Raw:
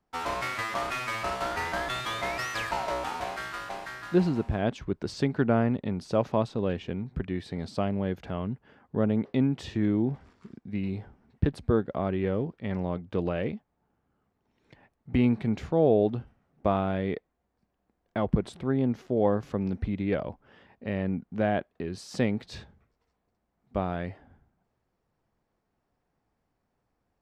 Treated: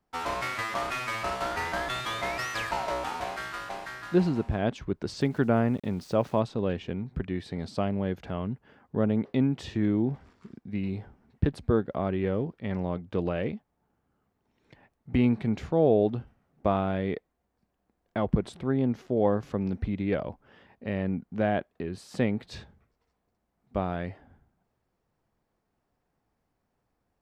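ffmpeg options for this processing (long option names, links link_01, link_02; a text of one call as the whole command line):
ffmpeg -i in.wav -filter_complex "[0:a]asettb=1/sr,asplit=3[link_01][link_02][link_03];[link_01]atrim=end=5.214[link_04];[link_02]atrim=start=5.21:end=6.4,asetpts=PTS-STARTPTS,afade=type=in:duration=0.004:curve=qsin,afade=type=out:start_time=1.186:duration=0.004:curve=qsin,aeval=exprs='val(0)*gte(abs(val(0)),0.00316)':channel_layout=same[link_05];[link_03]atrim=start=6.396[link_06];[link_04][link_05]acrossfade=duration=0.004:curve1=hsin:curve2=qsin[link_07];[link_07][link_06]acrossfade=duration=0.004:curve1=qsin:curve2=hsin,asettb=1/sr,asplit=3[link_08][link_09][link_10];[link_08]atrim=end=21.834[link_11];[link_09]atrim=start=21.83:end=22.51,asetpts=PTS-STARTPTS,afade=type=in:duration=0.004:curve=qsin,afade=type=out:start_time=0.676:duration=0.004:curve=qsin,equalizer=frequency=5600:width=1.5:gain=-7.5[link_12];[link_10]atrim=start=22.506[link_13];[link_11][link_12]acrossfade=duration=0.004:curve1=hsin:curve2=qsin[link_14];[link_14][link_13]acrossfade=duration=0.004:curve1=qsin:curve2=hsin" out.wav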